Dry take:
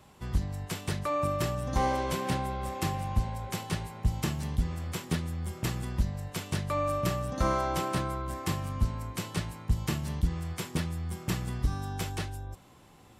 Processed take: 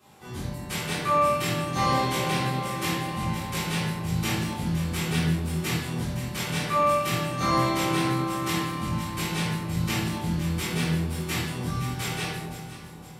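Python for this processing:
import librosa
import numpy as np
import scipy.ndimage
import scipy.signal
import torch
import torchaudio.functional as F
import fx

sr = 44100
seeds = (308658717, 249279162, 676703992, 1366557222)

p1 = scipy.signal.sosfilt(scipy.signal.butter(2, 160.0, 'highpass', fs=sr, output='sos'), x)
p2 = fx.high_shelf(p1, sr, hz=8000.0, db=5.0)
p3 = p2 + fx.echo_alternate(p2, sr, ms=258, hz=1000.0, feedback_pct=69, wet_db=-7.5, dry=0)
p4 = fx.dynamic_eq(p3, sr, hz=2600.0, q=0.79, threshold_db=-49.0, ratio=4.0, max_db=6)
p5 = fx.doubler(p4, sr, ms=24.0, db=-4)
p6 = fx.room_shoebox(p5, sr, seeds[0], volume_m3=290.0, walls='mixed', distance_m=3.6)
y = p6 * librosa.db_to_amplitude(-7.0)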